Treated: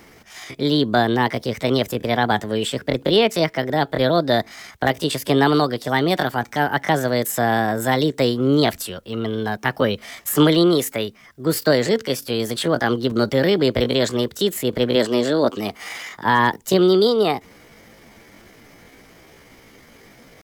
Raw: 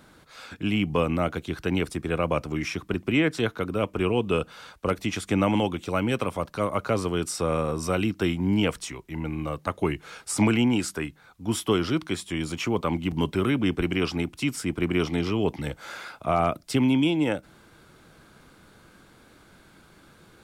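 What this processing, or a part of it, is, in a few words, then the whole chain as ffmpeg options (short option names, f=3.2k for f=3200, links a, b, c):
chipmunk voice: -filter_complex "[0:a]asettb=1/sr,asplit=3[a][b][c];[a]atrim=end=14.964[d];[b]atrim=start=14.96:end=15.81,asetpts=PTS-STARTPTS,afade=t=in:d=0.004:c=qsin,afade=t=out:st=0.846:d=0.004:c=qsin,lowshelf=f=140:t=q:w=1.5:g=-6[e];[c]atrim=start=15.806[f];[d][e]acrossfade=d=0.004:c1=hsin:c2=qsin[g];[g][f]acrossfade=d=0.004:c1=qsin:c2=hsin,asetrate=62367,aresample=44100,atempo=0.707107,volume=6.5dB"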